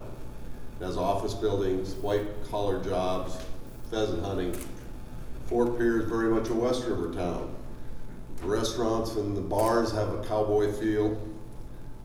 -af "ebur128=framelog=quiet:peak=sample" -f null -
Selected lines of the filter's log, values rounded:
Integrated loudness:
  I:         -29.1 LUFS
  Threshold: -40.2 LUFS
Loudness range:
  LRA:         3.7 LU
  Threshold: -50.1 LUFS
  LRA low:   -32.0 LUFS
  LRA high:  -28.3 LUFS
Sample peak:
  Peak:      -11.7 dBFS